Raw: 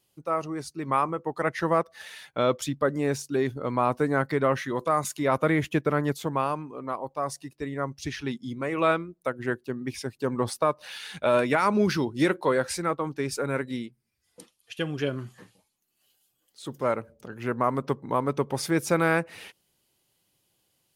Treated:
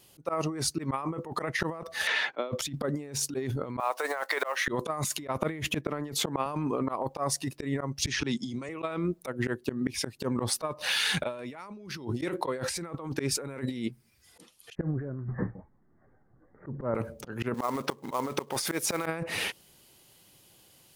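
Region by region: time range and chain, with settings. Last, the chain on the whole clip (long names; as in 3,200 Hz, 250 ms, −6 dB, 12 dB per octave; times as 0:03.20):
0:02.07–0:02.52: high-pass filter 260 Hz 24 dB per octave + high-frequency loss of the air 150 metres + multiband upward and downward compressor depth 40%
0:03.80–0:04.68: one scale factor per block 7 bits + high-pass filter 610 Hz 24 dB per octave + downward compressor 1.5 to 1, threshold −37 dBFS
0:05.84–0:06.46: high-pass filter 160 Hz + high-shelf EQ 11,000 Hz −8.5 dB
0:08.07–0:08.69: low-pass filter 9,600 Hz 24 dB per octave + parametric band 6,400 Hz +7.5 dB 1.1 octaves + multiband upward and downward compressor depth 100%
0:14.75–0:16.95: Butterworth low-pass 2,000 Hz 96 dB per octave + spectral tilt −3.5 dB per octave + downward compressor 20 to 1, threshold −26 dBFS
0:17.54–0:19.06: high-pass filter 610 Hz 6 dB per octave + floating-point word with a short mantissa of 2 bits
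whole clip: dynamic equaliser 1,500 Hz, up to −5 dB, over −45 dBFS, Q 5.6; volume swells 269 ms; compressor whose output falls as the input rises −40 dBFS, ratio −1; level +7 dB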